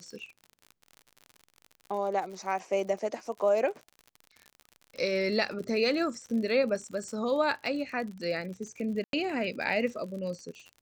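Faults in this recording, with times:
crackle 56 per s -38 dBFS
9.04–9.13 s: dropout 92 ms

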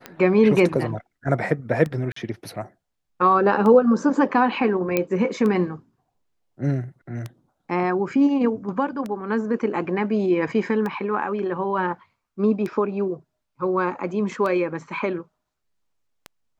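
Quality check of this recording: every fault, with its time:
tick 33 1/3 rpm -17 dBFS
2.12–2.16 s: dropout 44 ms
4.97 s: pop -7 dBFS

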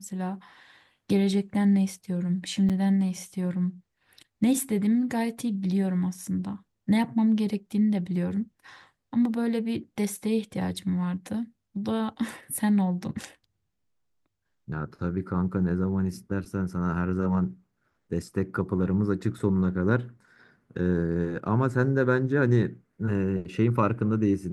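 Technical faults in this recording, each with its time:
2.69–2.70 s: dropout 7.2 ms

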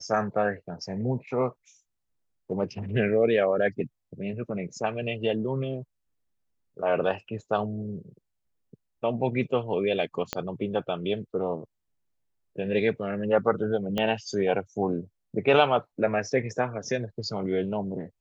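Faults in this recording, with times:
10.33 s: pop -12 dBFS
13.98 s: pop -15 dBFS

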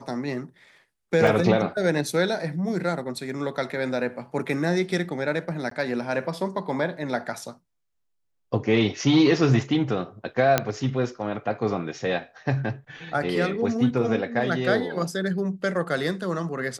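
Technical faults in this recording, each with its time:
1.27 s: dropout 2.3 ms
5.70–5.71 s: dropout
10.58 s: pop -4 dBFS

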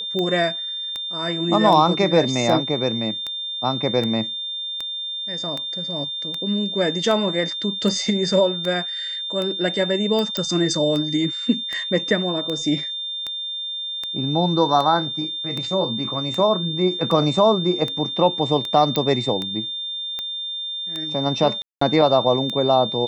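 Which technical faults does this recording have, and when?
tick 78 rpm -14 dBFS
whine 3.6 kHz -26 dBFS
10.37 s: pop -9 dBFS
18.96 s: pop -7 dBFS
21.62–21.81 s: dropout 194 ms

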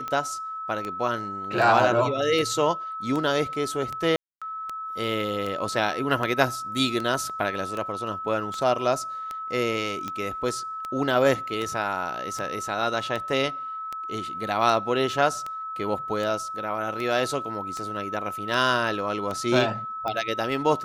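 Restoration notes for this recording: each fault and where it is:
tick 78 rpm -18 dBFS
whine 1.3 kHz -31 dBFS
4.16–4.42 s: dropout 256 ms

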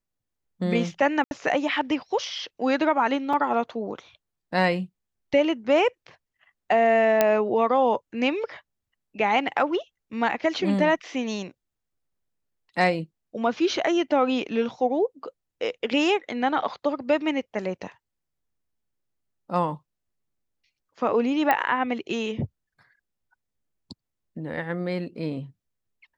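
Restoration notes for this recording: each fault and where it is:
1.24–1.31 s: dropout 71 ms
3.33 s: dropout 3.8 ms
7.21 s: pop -5 dBFS
21.51 s: pop -9 dBFS

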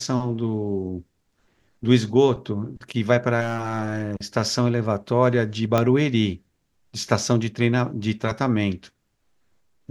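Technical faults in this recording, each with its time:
3.40–4.16 s: clipped -19.5 dBFS
5.78 s: pop -7 dBFS

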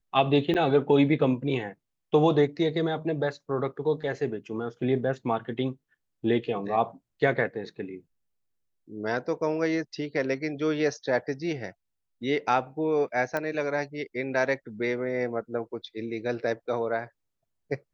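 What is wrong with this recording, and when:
0.54–0.55 s: dropout 8.3 ms
13.37 s: pop -16 dBFS

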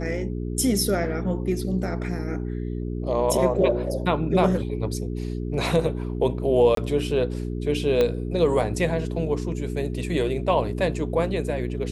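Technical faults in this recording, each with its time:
hum 60 Hz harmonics 7 -29 dBFS
6.75–6.77 s: dropout 23 ms
8.01 s: pop -10 dBFS

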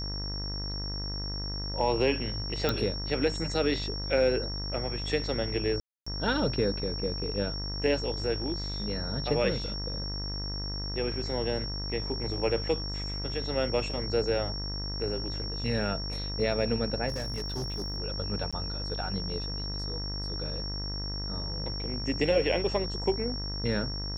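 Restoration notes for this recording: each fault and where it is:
buzz 50 Hz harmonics 40 -36 dBFS
whine 5.5 kHz -36 dBFS
2.69 s: pop -12 dBFS
5.80–6.07 s: dropout 265 ms
17.08–17.98 s: clipped -29 dBFS
18.51–18.53 s: dropout 16 ms

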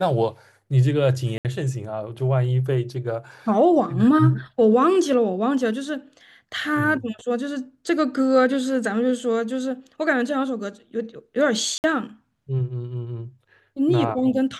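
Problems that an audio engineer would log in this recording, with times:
1.38–1.45 s: dropout 68 ms
11.78–11.84 s: dropout 59 ms

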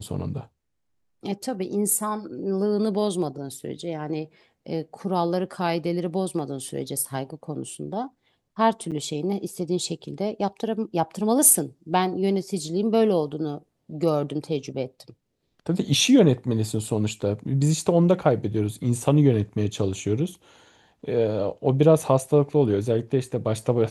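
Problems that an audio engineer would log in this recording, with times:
8.91–8.92 s: dropout 7.7 ms

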